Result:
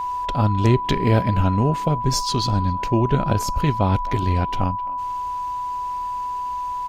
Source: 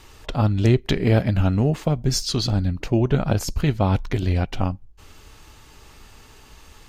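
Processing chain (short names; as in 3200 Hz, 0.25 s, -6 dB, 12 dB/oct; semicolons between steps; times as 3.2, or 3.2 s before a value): whine 990 Hz -23 dBFS; speakerphone echo 0.26 s, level -18 dB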